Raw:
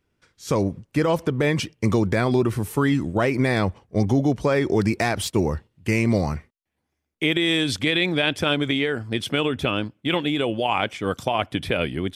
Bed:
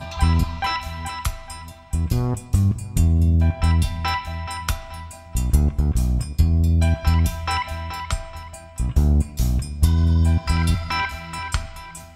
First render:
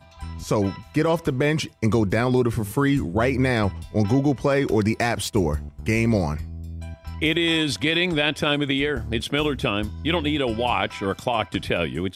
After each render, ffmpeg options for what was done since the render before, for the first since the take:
-filter_complex "[1:a]volume=-17dB[a];[0:a][a]amix=inputs=2:normalize=0"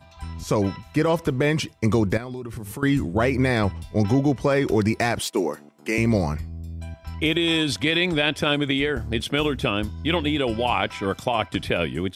-filter_complex "[0:a]asettb=1/sr,asplit=3[a][b][c];[a]atrim=end=2.174[d];[b]atrim=start=2.17:end=2.83,asetpts=PTS-STARTPTS,afade=t=in:d=0.004:c=qsin,afade=t=out:st=0.656:d=0.004:c=qsin,acompressor=threshold=-30dB:ratio=6:attack=3.2:release=140:knee=1:detection=peak[e];[c]atrim=start=2.826[f];[d][e]acrossfade=d=0.004:c1=hsin:c2=qsin[g];[g][f]acrossfade=d=0.004:c1=qsin:c2=hsin,asettb=1/sr,asplit=3[h][i][j];[h]atrim=end=5.194[k];[i]atrim=start=5.19:end=5.98,asetpts=PTS-STARTPTS,afade=t=in:d=0.004:c=qsin,afade=t=out:st=0.786:d=0.004:c=qsin,highpass=f=250:w=0.5412,highpass=f=250:w=1.3066[l];[j]atrim=start=5.976[m];[k][l]acrossfade=d=0.004:c1=hsin:c2=qsin[n];[n][m]acrossfade=d=0.004:c1=qsin:c2=hsin,asettb=1/sr,asplit=3[o][p][q];[o]atrim=end=7.204[r];[p]atrim=start=7.2:end=7.72,asetpts=PTS-STARTPTS,afade=t=in:d=0.004:c=qsin,afade=t=out:st=0.516:d=0.004:c=qsin,bandreject=f=2k:w=8.5[s];[q]atrim=start=7.716[t];[r][s]acrossfade=d=0.004:c1=hsin:c2=qsin[u];[u][t]acrossfade=d=0.004:c1=qsin:c2=hsin"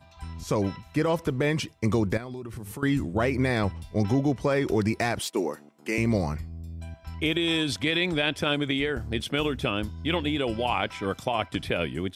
-af "volume=-4dB"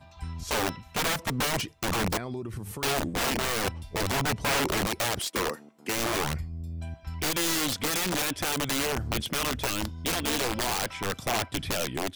-af "aeval=exprs='(mod(12.6*val(0)+1,2)-1)/12.6':c=same,aphaser=in_gain=1:out_gain=1:delay=4.5:decay=0.22:speed=0.44:type=sinusoidal"

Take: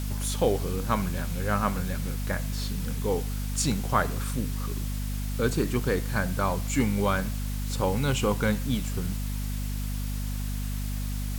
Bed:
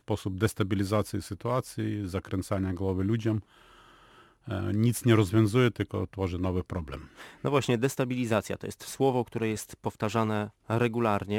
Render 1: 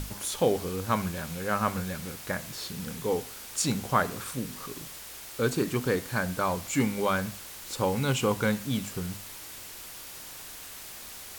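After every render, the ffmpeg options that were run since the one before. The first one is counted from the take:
-af "bandreject=f=50:t=h:w=6,bandreject=f=100:t=h:w=6,bandreject=f=150:t=h:w=6,bandreject=f=200:t=h:w=6,bandreject=f=250:t=h:w=6"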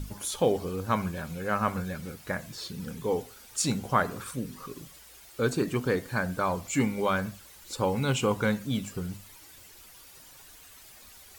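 -af "afftdn=nr=11:nf=-44"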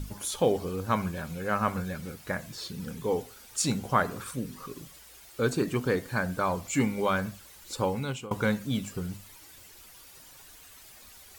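-filter_complex "[0:a]asplit=2[a][b];[a]atrim=end=8.31,asetpts=PTS-STARTPTS,afade=t=out:st=7.8:d=0.51:silence=0.0944061[c];[b]atrim=start=8.31,asetpts=PTS-STARTPTS,afade=t=in:d=0.004:c=hsin:silence=0.0944061[d];[c][d]concat=n=2:v=0:a=1"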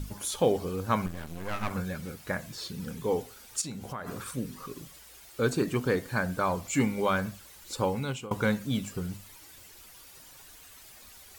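-filter_complex "[0:a]asettb=1/sr,asplit=3[a][b][c];[a]atrim=end=1.064[d];[b]atrim=start=1.06:end=1.71,asetpts=PTS-STARTPTS,afade=t=in:d=0.004:c=qsin,afade=t=out:st=0.646:d=0.004:c=qsin,aeval=exprs='max(val(0),0)':c=same[e];[c]atrim=start=1.706[f];[d][e]acrossfade=d=0.004:c1=hsin:c2=qsin[g];[g][f]acrossfade=d=0.004:c1=qsin:c2=hsin,asplit=3[h][i][j];[h]afade=t=out:st=3.6:d=0.02[k];[i]acompressor=threshold=-36dB:ratio=4:attack=3.2:release=140:knee=1:detection=peak,afade=t=in:st=3.6:d=0.02,afade=t=out:st=4.06:d=0.02[l];[j]afade=t=in:st=4.06:d=0.02[m];[k][l][m]amix=inputs=3:normalize=0"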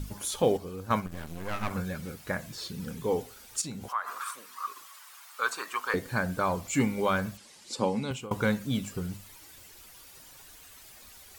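-filter_complex "[0:a]asettb=1/sr,asplit=3[a][b][c];[a]atrim=end=0.424[d];[b]atrim=start=0.42:end=1.12,asetpts=PTS-STARTPTS,afade=t=in:d=0.004:c=qsin,afade=t=out:st=0.696:d=0.004:c=qsin,agate=range=-6dB:threshold=-30dB:ratio=16:release=100:detection=peak[e];[c]atrim=start=1.116[f];[d][e]acrossfade=d=0.004:c1=hsin:c2=qsin[g];[g][f]acrossfade=d=0.004:c1=qsin:c2=hsin,asettb=1/sr,asplit=3[h][i][j];[h]atrim=end=3.884[k];[i]atrim=start=3.88:end=5.94,asetpts=PTS-STARTPTS,afade=t=in:d=0.004:c=qsin,afade=t=out:st=2.056:d=0.004:c=qsin,highpass=f=1.1k:t=q:w=3.6[l];[j]atrim=start=5.936[m];[k][l]acrossfade=d=0.004:c1=hsin:c2=qsin[n];[n][m]acrossfade=d=0.004:c1=qsin:c2=hsin,asettb=1/sr,asplit=3[o][p][q];[o]atrim=end=7.374[r];[p]atrim=start=7.37:end=8.11,asetpts=PTS-STARTPTS,afade=t=in:d=0.004:c=qsin,afade=t=out:st=0.736:d=0.004:c=qsin,highpass=160,equalizer=f=220:t=q:w=4:g=8,equalizer=f=1.4k:t=q:w=4:g=-6,equalizer=f=4.9k:t=q:w=4:g=4,lowpass=f=9.6k:w=0.5412,lowpass=f=9.6k:w=1.3066[s];[q]atrim=start=8.106[t];[r][s]acrossfade=d=0.004:c1=hsin:c2=qsin[u];[u][t]acrossfade=d=0.004:c1=qsin:c2=hsin"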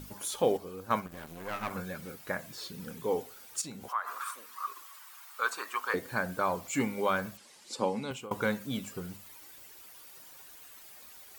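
-af "lowpass=f=1.8k:p=1,aemphasis=mode=production:type=bsi"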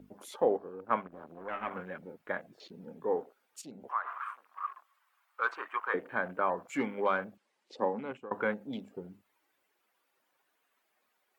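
-filter_complex "[0:a]afwtdn=0.00562,acrossover=split=210 2800:gain=0.141 1 0.2[a][b][c];[a][b][c]amix=inputs=3:normalize=0"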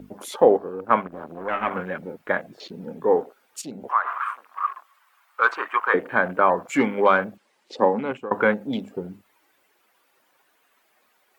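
-af "volume=12dB,alimiter=limit=-3dB:level=0:latency=1"

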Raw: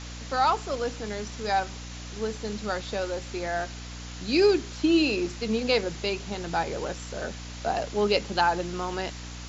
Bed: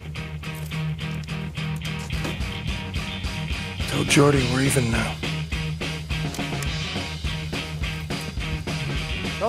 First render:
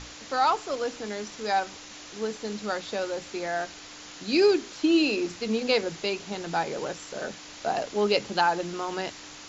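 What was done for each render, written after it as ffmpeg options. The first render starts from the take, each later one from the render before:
-af "bandreject=f=60:t=h:w=6,bandreject=f=120:t=h:w=6,bandreject=f=180:t=h:w=6,bandreject=f=240:t=h:w=6"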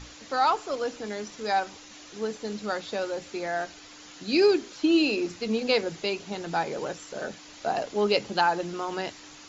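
-af "afftdn=nr=6:nf=-45"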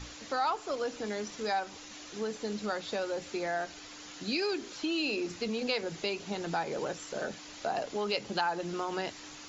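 -filter_complex "[0:a]acrossover=split=700[a][b];[a]alimiter=level_in=1.5dB:limit=-24dB:level=0:latency=1,volume=-1.5dB[c];[c][b]amix=inputs=2:normalize=0,acompressor=threshold=-32dB:ratio=2"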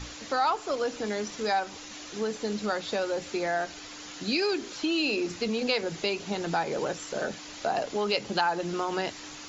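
-af "volume=4.5dB"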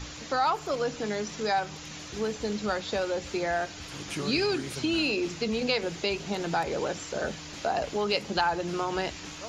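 -filter_complex "[1:a]volume=-18.5dB[a];[0:a][a]amix=inputs=2:normalize=0"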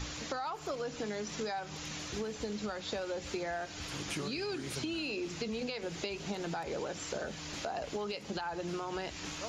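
-af "alimiter=limit=-21.5dB:level=0:latency=1:release=300,acompressor=threshold=-34dB:ratio=6"

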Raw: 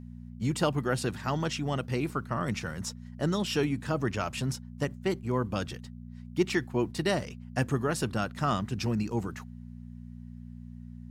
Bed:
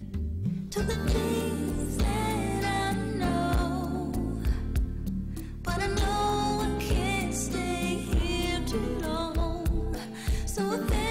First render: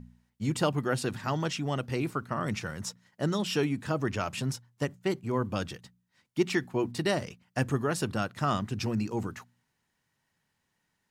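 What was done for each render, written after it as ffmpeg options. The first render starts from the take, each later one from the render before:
-af "bandreject=f=60:t=h:w=4,bandreject=f=120:t=h:w=4,bandreject=f=180:t=h:w=4,bandreject=f=240:t=h:w=4"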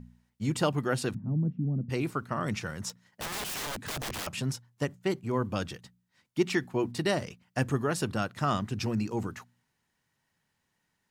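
-filter_complex "[0:a]asplit=3[a][b][c];[a]afade=t=out:st=1.13:d=0.02[d];[b]lowpass=f=210:t=q:w=2.5,afade=t=in:st=1.13:d=0.02,afade=t=out:st=1.89:d=0.02[e];[c]afade=t=in:st=1.89:d=0.02[f];[d][e][f]amix=inputs=3:normalize=0,asettb=1/sr,asplit=3[g][h][i];[g]atrim=end=2.894[j];[h]atrim=start=2.89:end=4.27,asetpts=PTS-STARTPTS,afade=t=in:d=0.004:c=qsin,afade=t=out:st=1.376:d=0.004:c=qsin,aeval=exprs='(mod(33.5*val(0)+1,2)-1)/33.5':c=same[k];[i]atrim=start=4.266[l];[j][k]acrossfade=d=0.004:c1=hsin:c2=qsin[m];[m][l]acrossfade=d=0.004:c1=qsin:c2=hsin"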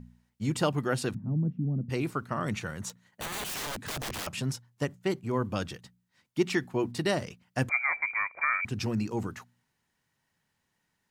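-filter_complex "[0:a]asettb=1/sr,asplit=3[a][b][c];[a]atrim=end=2.504[d];[b]atrim=start=2.5:end=3.47,asetpts=PTS-STARTPTS,afade=t=in:d=0.004:c=qsin,afade=t=out:st=0.966:d=0.004:c=qsin,bandreject=f=5.2k:w=6.1[e];[c]atrim=start=3.466[f];[d][e]acrossfade=d=0.004:c1=hsin:c2=qsin[g];[g][f]acrossfade=d=0.004:c1=qsin:c2=hsin,asettb=1/sr,asplit=3[h][i][j];[h]atrim=end=7.694[k];[i]atrim=start=7.69:end=8.65,asetpts=PTS-STARTPTS,afade=t=in:d=0.004:c=qsin,afade=t=out:st=0.956:d=0.004:c=qsin,lowpass=f=2.1k:t=q:w=0.5098,lowpass=f=2.1k:t=q:w=0.6013,lowpass=f=2.1k:t=q:w=0.9,lowpass=f=2.1k:t=q:w=2.563,afreqshift=-2500[l];[j]atrim=start=8.646[m];[k][l]acrossfade=d=0.004:c1=hsin:c2=qsin[n];[n][m]acrossfade=d=0.004:c1=qsin:c2=hsin"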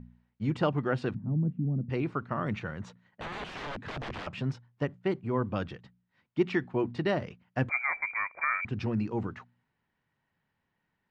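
-af "lowpass=3.3k,aemphasis=mode=reproduction:type=50kf"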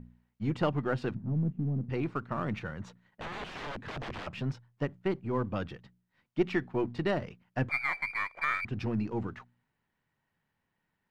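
-af "aeval=exprs='if(lt(val(0),0),0.708*val(0),val(0))':c=same"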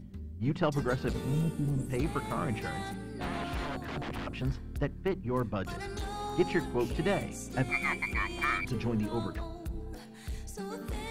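-filter_complex "[1:a]volume=-10.5dB[a];[0:a][a]amix=inputs=2:normalize=0"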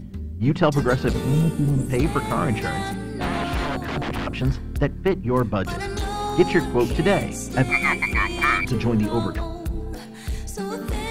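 -af "volume=10.5dB"

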